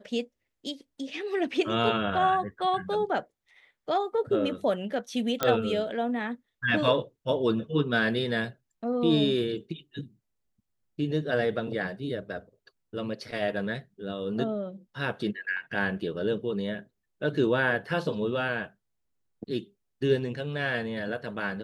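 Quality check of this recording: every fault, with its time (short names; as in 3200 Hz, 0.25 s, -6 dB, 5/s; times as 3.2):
5.43 pop -9 dBFS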